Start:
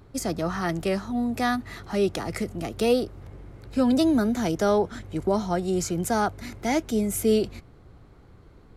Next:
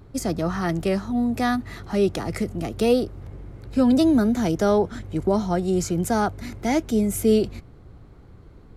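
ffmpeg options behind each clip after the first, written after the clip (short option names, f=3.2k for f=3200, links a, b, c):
-af "lowshelf=f=420:g=5"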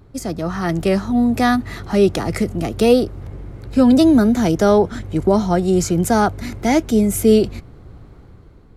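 -af "dynaudnorm=f=200:g=7:m=7.5dB"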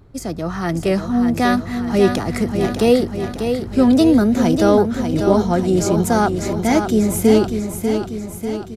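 -af "aecho=1:1:593|1186|1779|2372|2965|3558|4151:0.447|0.259|0.15|0.0872|0.0505|0.0293|0.017,volume=-1dB"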